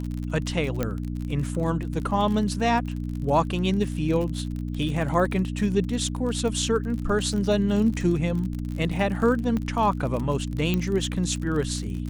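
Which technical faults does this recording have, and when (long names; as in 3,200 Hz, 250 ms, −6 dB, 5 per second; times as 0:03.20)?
surface crackle 45 per second −30 dBFS
mains hum 60 Hz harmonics 5 −30 dBFS
0:00.83: click −12 dBFS
0:09.57: click −17 dBFS
0:10.74: click −12 dBFS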